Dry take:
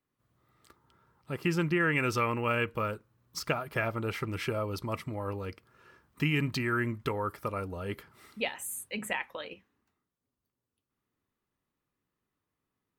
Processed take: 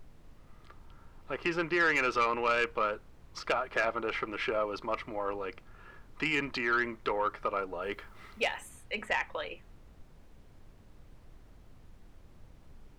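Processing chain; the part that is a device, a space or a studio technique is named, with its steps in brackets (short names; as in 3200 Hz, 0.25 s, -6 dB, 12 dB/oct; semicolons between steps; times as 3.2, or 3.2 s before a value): aircraft cabin announcement (BPF 440–3000 Hz; soft clip -24.5 dBFS, distortion -15 dB; brown noise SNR 17 dB); 7.82–8.69 high shelf 8300 Hz +9.5 dB; gain +5 dB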